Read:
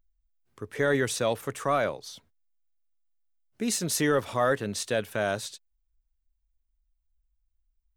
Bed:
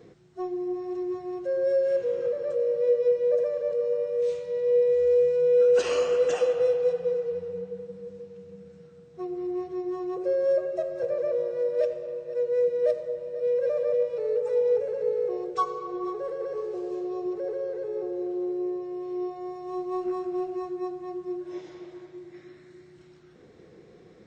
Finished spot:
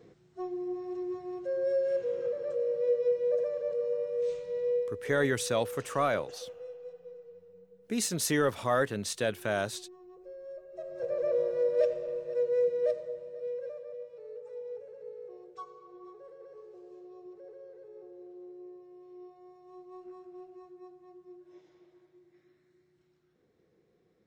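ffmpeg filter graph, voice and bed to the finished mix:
ffmpeg -i stem1.wav -i stem2.wav -filter_complex "[0:a]adelay=4300,volume=-2.5dB[link_01];[1:a]volume=15dB,afade=type=out:start_time=4.65:duration=0.32:silence=0.158489,afade=type=in:start_time=10.68:duration=0.69:silence=0.1,afade=type=out:start_time=12.2:duration=1.63:silence=0.141254[link_02];[link_01][link_02]amix=inputs=2:normalize=0" out.wav

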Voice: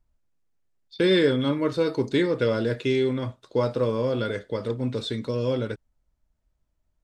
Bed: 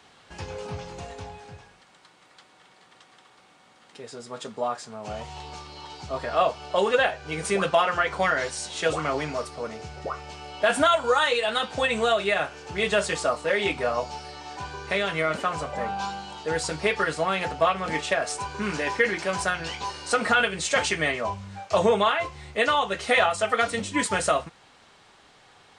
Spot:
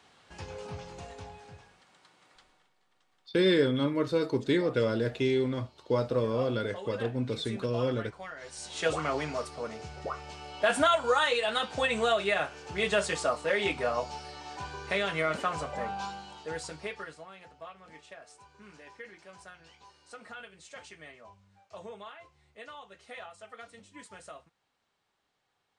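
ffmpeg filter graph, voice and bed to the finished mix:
ffmpeg -i stem1.wav -i stem2.wav -filter_complex "[0:a]adelay=2350,volume=-4dB[link_01];[1:a]volume=9.5dB,afade=type=out:start_time=2.32:duration=0.4:silence=0.211349,afade=type=in:start_time=8.4:duration=0.43:silence=0.16788,afade=type=out:start_time=15.6:duration=1.68:silence=0.1[link_02];[link_01][link_02]amix=inputs=2:normalize=0" out.wav

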